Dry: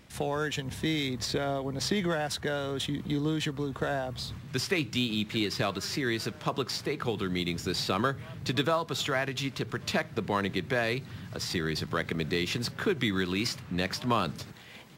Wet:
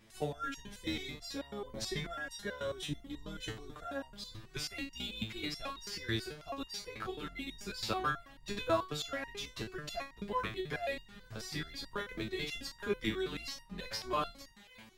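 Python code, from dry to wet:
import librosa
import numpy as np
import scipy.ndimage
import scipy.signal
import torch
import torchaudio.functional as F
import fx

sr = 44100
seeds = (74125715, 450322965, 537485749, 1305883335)

y = fx.octave_divider(x, sr, octaves=2, level_db=1.0)
y = fx.low_shelf(y, sr, hz=240.0, db=-5.0)
y = fx.resonator_held(y, sr, hz=9.2, low_hz=110.0, high_hz=940.0)
y = F.gain(torch.from_numpy(y), 5.5).numpy()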